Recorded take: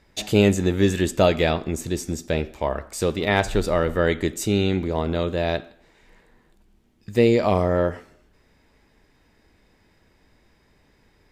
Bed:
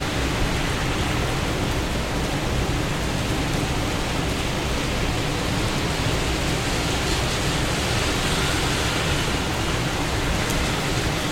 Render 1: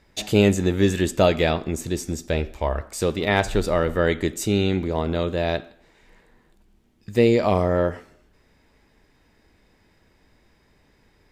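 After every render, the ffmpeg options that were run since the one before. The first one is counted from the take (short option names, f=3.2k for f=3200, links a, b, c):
-filter_complex "[0:a]asettb=1/sr,asplit=3[a][b][c];[a]atrim=end=1.984[d];[b]atrim=start=1.98:end=2.81,asetpts=PTS-STARTPTS,afade=t=in:d=0.004:c=qsin,afade=t=out:st=0.826:d=0.004:c=qsin,asubboost=boost=11:cutoff=92[e];[c]atrim=start=2.806[f];[d][e]acrossfade=d=0.004:c1=hsin:c2=qsin[g];[g][f]acrossfade=d=0.004:c1=qsin:c2=hsin"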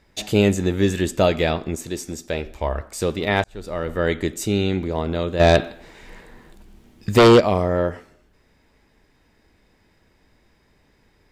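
-filter_complex "[0:a]asettb=1/sr,asplit=3[a][b][c];[a]atrim=end=1.754[d];[b]atrim=start=1.75:end=2.46,asetpts=PTS-STARTPTS,afade=t=in:d=0.004:c=qsin,afade=t=out:st=0.706:d=0.004:c=qsin,lowshelf=f=190:g=-8.5[e];[c]atrim=start=2.456[f];[d][e]acrossfade=d=0.004:c1=hsin:c2=qsin[g];[g][f]acrossfade=d=0.004:c1=qsin:c2=hsin,asplit=3[h][i][j];[h]afade=t=out:st=5.39:d=0.02[k];[i]aeval=exprs='0.473*sin(PI/2*2.51*val(0)/0.473)':c=same,afade=t=in:st=5.39:d=0.02,afade=t=out:st=7.39:d=0.02[l];[j]afade=t=in:st=7.39:d=0.02[m];[k][l][m]amix=inputs=3:normalize=0,asplit=2[n][o];[n]atrim=end=3.44,asetpts=PTS-STARTPTS,afade=t=out:st=3.436:d=0.004:c=hsin[p];[o]atrim=start=3.44,asetpts=PTS-STARTPTS,afade=t=in:d=0.66[q];[p][q]concat=n=2:v=0:a=1"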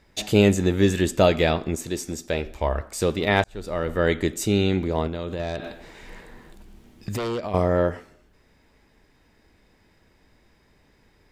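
-filter_complex "[0:a]asettb=1/sr,asplit=3[a][b][c];[a]atrim=end=5.074[d];[b]atrim=start=5.07:end=7.54,asetpts=PTS-STARTPTS,afade=t=in:d=0.004:c=qsin,afade=t=out:st=2.466:d=0.004:c=qsin,acompressor=threshold=-25dB:ratio=16:attack=3.2:release=140:knee=1:detection=peak[e];[c]atrim=start=7.536[f];[d][e]acrossfade=d=0.004:c1=hsin:c2=qsin[g];[g][f]acrossfade=d=0.004:c1=qsin:c2=hsin"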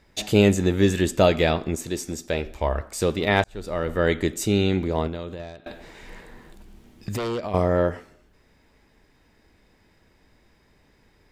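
-filter_complex "[0:a]asplit=2[a][b];[a]atrim=end=5.66,asetpts=PTS-STARTPTS,afade=t=out:st=5.06:d=0.6:silence=0.0668344[c];[b]atrim=start=5.66,asetpts=PTS-STARTPTS,afade=t=in:d=0.004:c=hsin:silence=0.0668344[d];[c][d]concat=n=2:v=0:a=1"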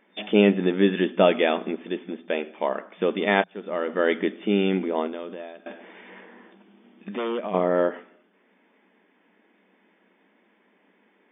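-af "afftfilt=real='re*between(b*sr/4096,180,3600)':imag='im*between(b*sr/4096,180,3600)':win_size=4096:overlap=0.75"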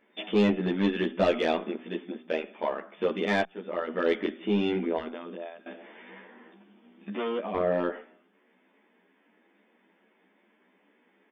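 -filter_complex "[0:a]asoftclip=type=tanh:threshold=-13dB,asplit=2[a][b];[b]adelay=11.6,afreqshift=2.4[c];[a][c]amix=inputs=2:normalize=1"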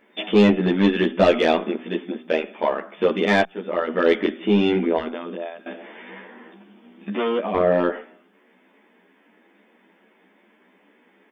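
-af "volume=8dB"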